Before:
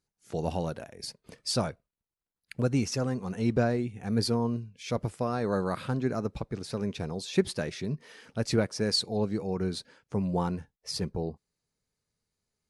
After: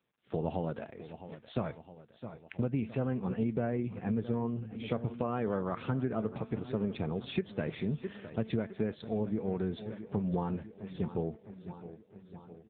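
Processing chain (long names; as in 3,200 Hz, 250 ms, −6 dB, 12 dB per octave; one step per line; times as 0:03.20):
tuned comb filter 220 Hz, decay 0.32 s, harmonics all, mix 50%
repeating echo 661 ms, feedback 59%, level −16.5 dB
downward compressor 16 to 1, threshold −34 dBFS, peak gain reduction 12 dB
level +7 dB
AMR narrowband 6.7 kbit/s 8,000 Hz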